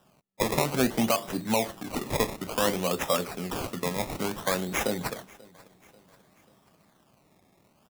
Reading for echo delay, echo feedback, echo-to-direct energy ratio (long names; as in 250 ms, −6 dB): 538 ms, 50%, −22.5 dB